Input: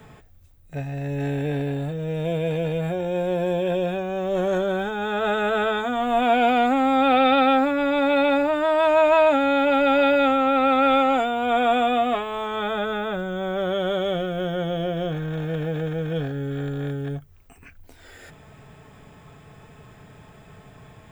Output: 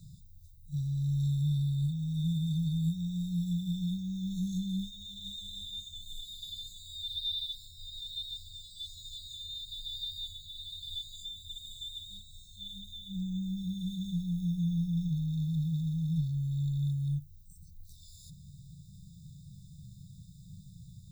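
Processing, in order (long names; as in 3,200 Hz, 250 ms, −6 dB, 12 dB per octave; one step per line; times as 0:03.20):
brick-wall band-stop 200–3,500 Hz
echo ahead of the sound 41 ms −12 dB
level −1 dB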